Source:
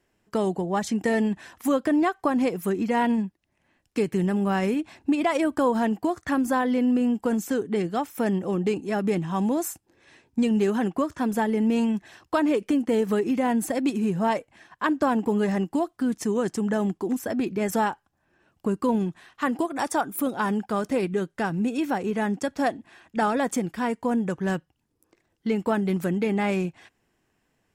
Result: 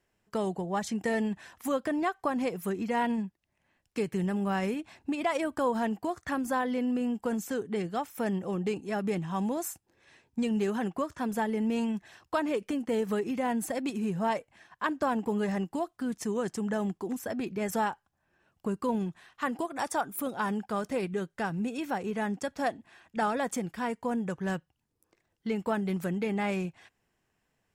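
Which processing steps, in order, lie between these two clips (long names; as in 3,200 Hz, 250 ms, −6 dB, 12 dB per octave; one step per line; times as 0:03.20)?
parametric band 300 Hz −5 dB 0.75 octaves
level −4.5 dB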